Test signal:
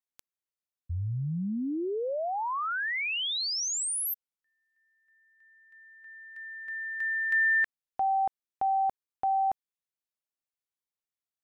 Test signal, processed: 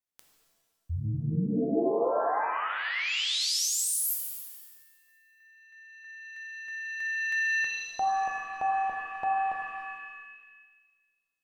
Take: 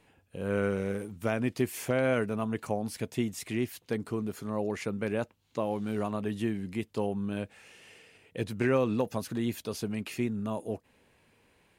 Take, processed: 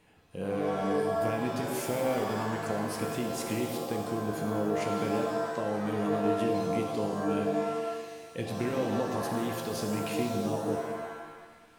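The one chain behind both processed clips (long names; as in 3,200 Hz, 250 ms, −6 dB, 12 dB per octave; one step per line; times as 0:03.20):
dynamic equaliser 1,500 Hz, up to −7 dB, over −49 dBFS, Q 2.2
downward compressor, threshold −29 dBFS
reverb with rising layers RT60 1.3 s, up +7 semitones, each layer −2 dB, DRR 2.5 dB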